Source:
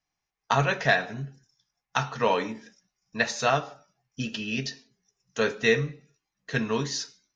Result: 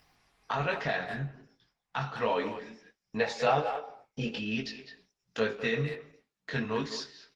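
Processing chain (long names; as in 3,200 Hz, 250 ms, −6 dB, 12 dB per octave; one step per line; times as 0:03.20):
far-end echo of a speakerphone 200 ms, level −12 dB
noise gate with hold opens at −52 dBFS
0:01.24–0:01.99: high-frequency loss of the air 120 metres
0:05.65–0:06.65: high-pass filter 100 Hz 6 dB per octave
brickwall limiter −15 dBFS, peak gain reduction 6.5 dB
upward compression, threshold −29 dBFS
parametric band 6,300 Hz −13.5 dB 0.24 octaves
0:03.17–0:04.37: hollow resonant body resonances 490/800/2,200 Hz, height 11 dB → 16 dB, ringing for 35 ms
chorus effect 1.3 Hz, delay 18 ms, depth 3.5 ms
Opus 16 kbit/s 48,000 Hz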